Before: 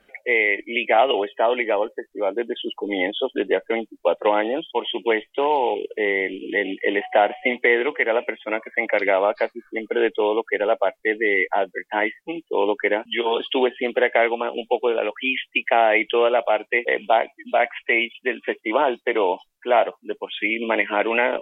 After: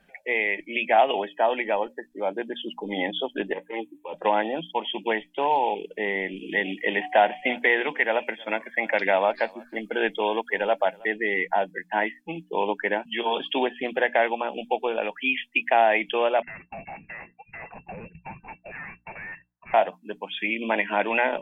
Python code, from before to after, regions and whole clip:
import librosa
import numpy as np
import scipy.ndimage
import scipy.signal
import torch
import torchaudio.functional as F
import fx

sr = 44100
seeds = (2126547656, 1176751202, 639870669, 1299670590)

y = fx.chain(x, sr, fx.highpass(hz=82.0, slope=12),
    fx.fixed_phaser(hz=990.0, stages=8),
    fx.over_compress(threshold_db=-27.0, ratio=-1.0), at=(3.53, 4.14))
y = fx.chain(y, sr, fx.high_shelf(hz=2400.0, db=6.0),
    fx.echo_single(ms=319, db=-23.5), at=(6.36, 11.07))
y = fx.chain(y, sr, fx.highpass(hz=810.0, slope=12),
    fx.tube_stage(drive_db=33.0, bias=0.6),
    fx.freq_invert(carrier_hz=2700), at=(16.42, 19.74))
y = fx.peak_eq(y, sr, hz=170.0, db=11.0, octaves=0.5)
y = fx.hum_notches(y, sr, base_hz=60, count=5)
y = y + 0.4 * np.pad(y, (int(1.2 * sr / 1000.0), 0))[:len(y)]
y = F.gain(torch.from_numpy(y), -3.5).numpy()